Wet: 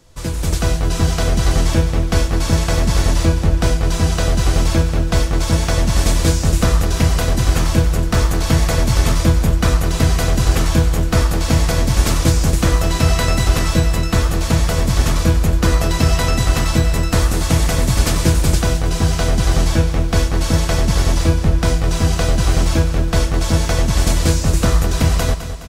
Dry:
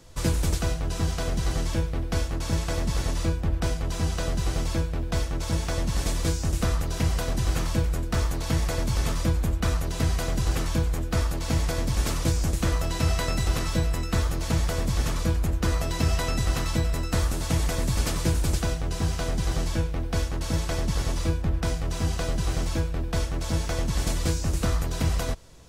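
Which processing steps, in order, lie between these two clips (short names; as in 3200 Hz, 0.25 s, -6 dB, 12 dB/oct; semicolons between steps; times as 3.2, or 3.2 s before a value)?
AGC gain up to 11.5 dB; on a send: feedback echo 0.209 s, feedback 52%, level -11 dB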